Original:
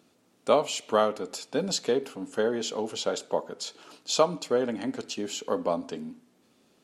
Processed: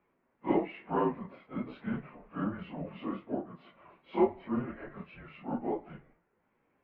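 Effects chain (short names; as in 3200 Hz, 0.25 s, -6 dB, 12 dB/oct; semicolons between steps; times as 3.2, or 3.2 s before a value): phase scrambler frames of 0.1 s; mistuned SSB -260 Hz 500–2400 Hz; gain -3.5 dB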